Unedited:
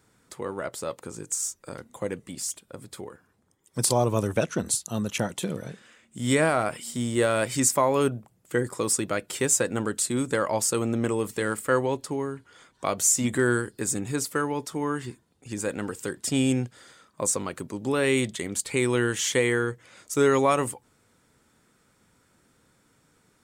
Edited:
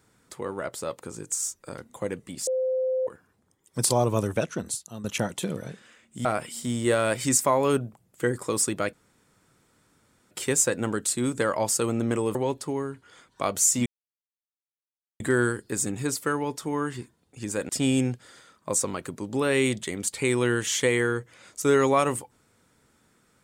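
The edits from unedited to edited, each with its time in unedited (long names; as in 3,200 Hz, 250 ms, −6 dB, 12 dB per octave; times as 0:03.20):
0:02.47–0:03.07: beep over 517 Hz −22.5 dBFS
0:04.19–0:05.04: fade out, to −12 dB
0:06.25–0:06.56: remove
0:09.24: splice in room tone 1.38 s
0:11.28–0:11.78: remove
0:13.29: splice in silence 1.34 s
0:15.78–0:16.21: remove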